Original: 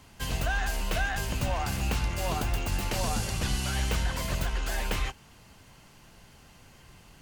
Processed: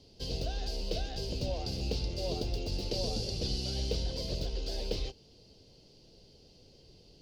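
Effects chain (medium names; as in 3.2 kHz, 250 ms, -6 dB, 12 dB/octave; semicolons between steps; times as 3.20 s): FFT filter 220 Hz 0 dB, 470 Hz +10 dB, 1.1 kHz -18 dB, 1.8 kHz -18 dB, 4.8 kHz +11 dB, 7.2 kHz -10 dB, 13 kHz -15 dB; trim -5.5 dB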